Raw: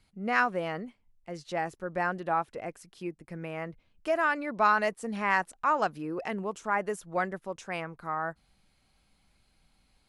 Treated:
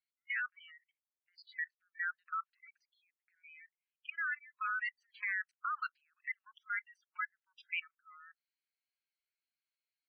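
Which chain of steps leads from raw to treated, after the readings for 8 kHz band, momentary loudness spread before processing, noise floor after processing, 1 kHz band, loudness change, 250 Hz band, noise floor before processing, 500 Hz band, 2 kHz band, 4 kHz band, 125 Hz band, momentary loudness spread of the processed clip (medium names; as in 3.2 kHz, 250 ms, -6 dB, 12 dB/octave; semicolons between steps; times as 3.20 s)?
under -30 dB, 14 LU, under -85 dBFS, -15.0 dB, -9.0 dB, under -40 dB, -70 dBFS, under -40 dB, -6.0 dB, -8.5 dB, under -40 dB, 20 LU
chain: elliptic low-pass 4.6 kHz, stop band 40 dB; spectral noise reduction 20 dB; Chebyshev shaper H 4 -33 dB, 6 -28 dB, 8 -29 dB, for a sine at -12.5 dBFS; steep high-pass 1.4 kHz 48 dB/octave; band-stop 3.6 kHz, Q 8.9; level held to a coarse grid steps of 21 dB; spectral gate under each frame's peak -15 dB strong; trim +7 dB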